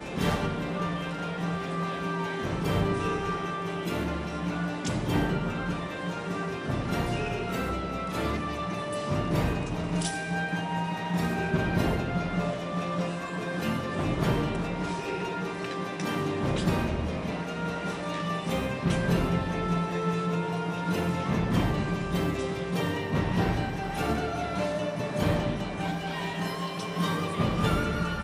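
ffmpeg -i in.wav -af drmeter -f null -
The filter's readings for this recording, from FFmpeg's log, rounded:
Channel 1: DR: 12.2
Overall DR: 12.2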